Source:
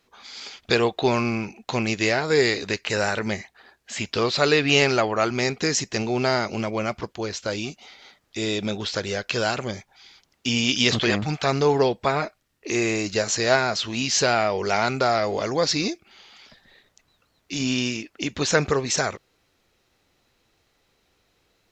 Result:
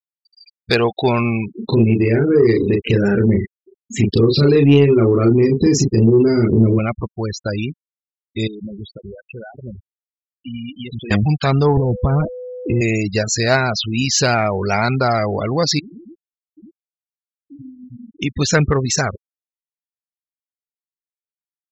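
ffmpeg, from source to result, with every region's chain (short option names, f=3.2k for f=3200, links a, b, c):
-filter_complex "[0:a]asettb=1/sr,asplit=3[a][b][c];[a]atrim=end=1.554[d];[b]atrim=start=1.55:end=6.79,asetpts=PTS-STARTPTS,afade=t=in:d=0.004:c=qsin,afade=t=out:st=5.236:d=0.004:c=qsin,lowshelf=f=520:t=q:w=3:g=9.5,acompressor=threshold=-21dB:ratio=2.5:attack=3.2:release=140:knee=1:detection=peak,asplit=2[e][f];[f]adelay=35,volume=-2.5dB[g];[e][g]amix=inputs=2:normalize=0,atrim=end_sample=231084[h];[c]atrim=start=6.786[i];[d][h]acrossfade=d=0.004:c1=hsin:c2=qsin[j];[j][i]acrossfade=d=0.004:c1=qsin:c2=hsin,asettb=1/sr,asplit=3[k][l][m];[k]atrim=end=8.474[n];[l]atrim=start=8.47:end=11.11,asetpts=PTS-STARTPTS,afade=t=in:d=0.004:c=qsin,afade=t=out:st=2.636:d=0.004:c=qsin,equalizer=f=310:w=1.6:g=2.5,acompressor=threshold=-39dB:ratio=2.5:attack=3.2:release=140:knee=1:detection=peak,aeval=exprs='val(0)+0.00112*(sin(2*PI*60*n/s)+sin(2*PI*2*60*n/s)/2+sin(2*PI*3*60*n/s)/3+sin(2*PI*4*60*n/s)/4+sin(2*PI*5*60*n/s)/5)':c=same[o];[m]atrim=start=11.106[p];[n][o]acrossfade=d=0.004:c1=hsin:c2=qsin[q];[q][p]acrossfade=d=0.004:c1=qsin:c2=hsin,asettb=1/sr,asplit=3[r][s][t];[r]atrim=end=11.774[u];[s]atrim=start=11.77:end=12.81,asetpts=PTS-STARTPTS,afade=t=in:d=0.004:c=qsin,afade=t=out:st=1.036:d=0.004:c=qsin,aemphasis=mode=reproduction:type=riaa,acompressor=threshold=-20dB:ratio=20:attack=3.2:release=140:knee=1:detection=peak,aeval=exprs='val(0)+0.0282*sin(2*PI*500*n/s)':c=same[v];[t]atrim=start=12.806[w];[u][v]acrossfade=d=0.004:c1=hsin:c2=qsin[x];[x][w]acrossfade=d=0.004:c1=qsin:c2=hsin,asettb=1/sr,asplit=3[y][z][aa];[y]atrim=end=15.794[ab];[z]atrim=start=15.79:end=18.22,asetpts=PTS-STARTPTS,afade=t=in:d=0.004:c=qsin,afade=t=out:st=2.426:d=0.004:c=qsin,aecho=1:1:50|99|116|209|782:0.237|0.708|0.335|0.211|0.119,atrim=end_sample=107163,acompressor=threshold=-37dB:ratio=12:attack=3.2:release=140:knee=1:detection=peak[ac];[aa]atrim=start=18.216[ad];[ab][ac]acrossfade=d=0.004:c1=hsin:c2=qsin[ae];[ae][ad]acrossfade=d=0.004:c1=qsin:c2=hsin,afftfilt=real='re*gte(hypot(re,im),0.0562)':imag='im*gte(hypot(re,im),0.0562)':win_size=1024:overlap=0.75,asubboost=boost=2.5:cutoff=230,acontrast=34"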